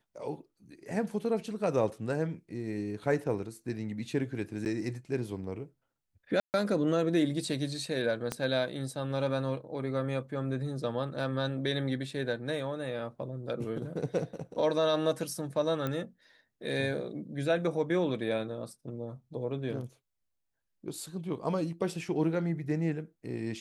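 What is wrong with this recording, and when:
4.65–4.66 gap 9.5 ms
6.4–6.54 gap 0.139 s
8.32 pop -17 dBFS
15.87 pop -20 dBFS

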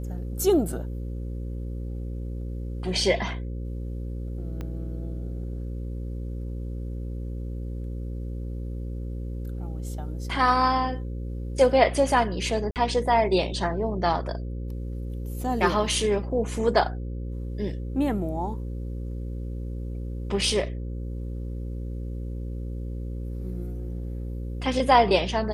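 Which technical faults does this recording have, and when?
buzz 60 Hz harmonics 9 -32 dBFS
4.61 pop -22 dBFS
12.71–12.76 gap 48 ms

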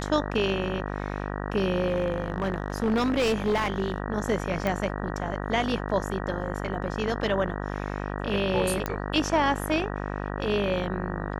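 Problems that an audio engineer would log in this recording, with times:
buzz 50 Hz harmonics 38 -32 dBFS
1.87–3.98 clipped -20 dBFS
4.67 pop -14 dBFS
8.86 pop -13 dBFS

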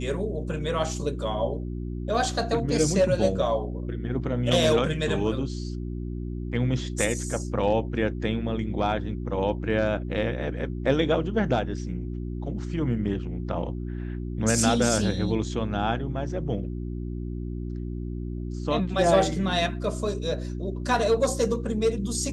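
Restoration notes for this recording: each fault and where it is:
hum 60 Hz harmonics 6 -32 dBFS

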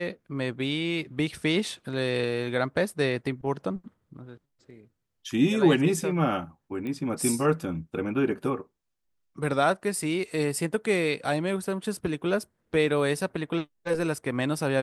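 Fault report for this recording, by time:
6.87 pop -24 dBFS

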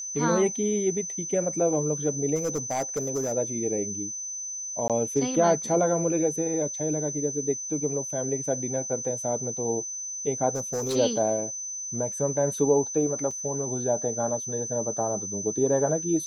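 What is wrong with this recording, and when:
tone 6100 Hz -32 dBFS
2.35–3.33 clipped -23 dBFS
4.88–4.9 gap 17 ms
10.55–10.96 clipped -24.5 dBFS
13.31 gap 4.2 ms

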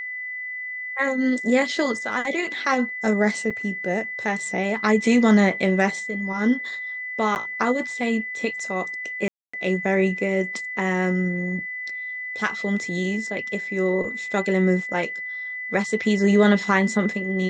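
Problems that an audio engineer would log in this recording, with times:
tone 2000 Hz -29 dBFS
3.5–3.51 gap 5.4 ms
7.35–7.36 gap 9.5 ms
9.28–9.54 gap 0.255 s

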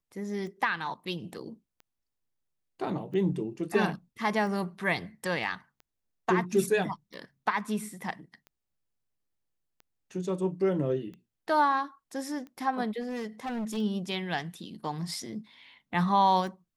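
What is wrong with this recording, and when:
tick 45 rpm -34 dBFS
13–13.78 clipped -30.5 dBFS

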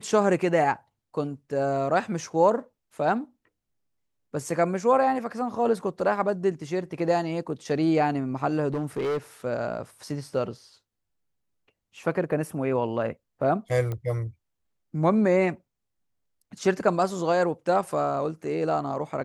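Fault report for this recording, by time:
8.74–9.18 clipped -24 dBFS
13.92 pop -20 dBFS

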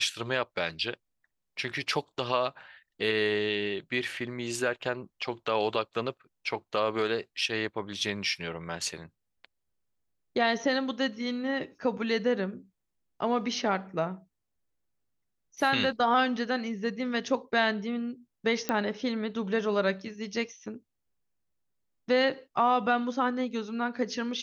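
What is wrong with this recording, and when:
18.69 pop -13 dBFS

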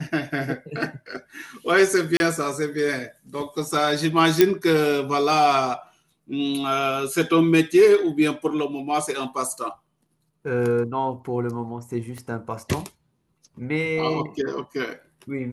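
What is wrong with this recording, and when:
2.17–2.2 gap 31 ms
4.41 pop -1 dBFS
12.18 pop -24 dBFS

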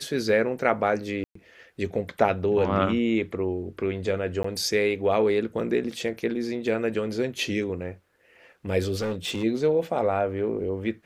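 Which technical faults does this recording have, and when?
1.24–1.35 gap 0.114 s
4.43–4.44 gap 14 ms
8.98–9.44 clipped -24.5 dBFS

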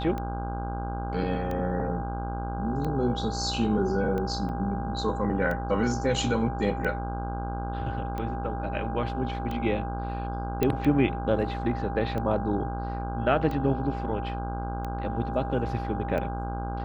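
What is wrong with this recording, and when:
buzz 60 Hz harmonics 27 -33 dBFS
tick 45 rpm -21 dBFS
tone 800 Hz -35 dBFS
4.49 gap 2.9 ms
10.63 pop -11 dBFS

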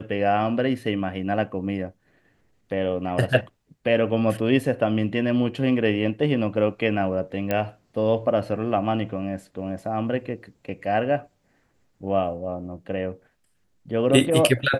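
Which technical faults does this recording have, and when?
7.51 pop -11 dBFS

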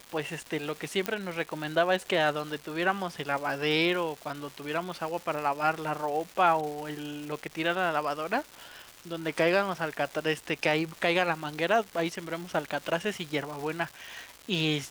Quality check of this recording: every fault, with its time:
crackle 550/s -36 dBFS
1.06 pop -12 dBFS

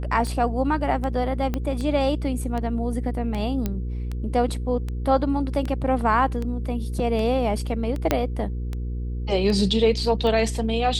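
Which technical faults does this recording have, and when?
hum 60 Hz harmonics 8 -28 dBFS
tick 78 rpm -18 dBFS
1.54 pop -13 dBFS
3.66 pop -12 dBFS
8.11 pop -5 dBFS

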